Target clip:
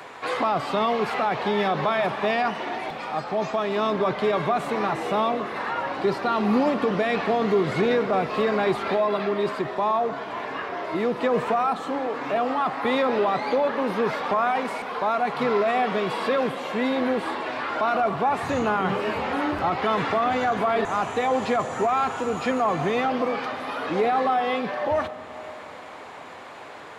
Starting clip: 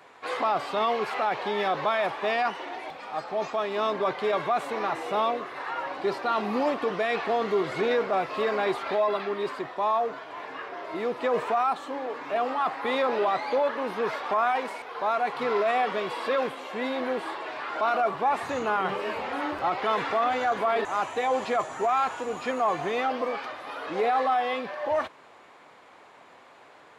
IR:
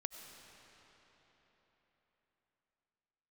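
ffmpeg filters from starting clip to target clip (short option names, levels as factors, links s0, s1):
-filter_complex "[0:a]acrossover=split=220[s0][s1];[s1]acompressor=threshold=0.00158:ratio=1.5[s2];[s0][s2]amix=inputs=2:normalize=0,asplit=2[s3][s4];[1:a]atrim=start_sample=2205[s5];[s4][s5]afir=irnorm=-1:irlink=0,volume=0.944[s6];[s3][s6]amix=inputs=2:normalize=0,volume=2.82"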